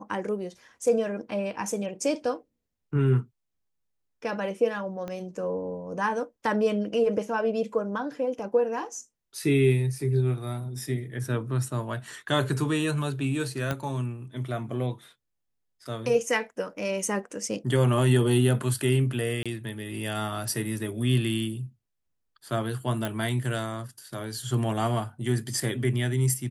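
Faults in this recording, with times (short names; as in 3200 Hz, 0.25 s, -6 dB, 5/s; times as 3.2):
5.08 pop -22 dBFS
13.71 pop -14 dBFS
19.43–19.46 gap 26 ms
23.05 pop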